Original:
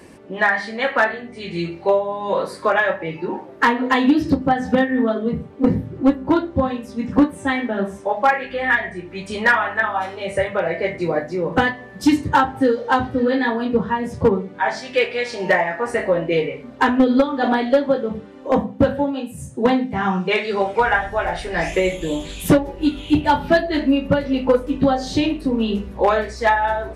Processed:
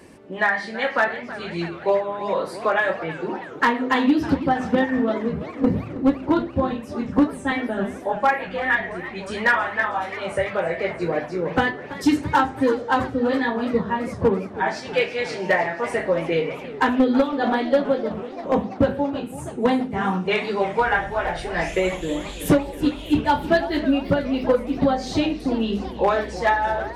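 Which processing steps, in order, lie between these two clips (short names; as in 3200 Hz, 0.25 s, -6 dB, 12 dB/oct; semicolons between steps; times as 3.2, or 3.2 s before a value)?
warbling echo 0.327 s, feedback 72%, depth 212 cents, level -15 dB; gain -3 dB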